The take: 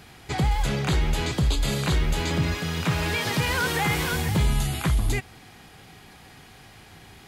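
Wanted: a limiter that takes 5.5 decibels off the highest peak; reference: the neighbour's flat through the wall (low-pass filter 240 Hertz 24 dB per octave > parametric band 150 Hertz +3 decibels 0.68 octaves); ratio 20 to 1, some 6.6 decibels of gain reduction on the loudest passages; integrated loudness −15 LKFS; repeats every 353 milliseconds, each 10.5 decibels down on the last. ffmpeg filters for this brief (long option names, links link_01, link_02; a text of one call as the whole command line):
ffmpeg -i in.wav -af "acompressor=threshold=-24dB:ratio=20,alimiter=limit=-22dB:level=0:latency=1,lowpass=frequency=240:width=0.5412,lowpass=frequency=240:width=1.3066,equalizer=frequency=150:width_type=o:width=0.68:gain=3,aecho=1:1:353|706|1059:0.299|0.0896|0.0269,volume=17.5dB" out.wav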